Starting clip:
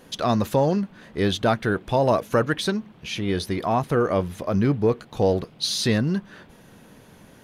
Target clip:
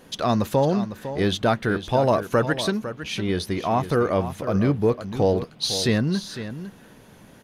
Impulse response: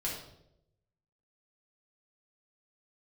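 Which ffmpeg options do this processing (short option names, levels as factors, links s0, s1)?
-af "aecho=1:1:504:0.266"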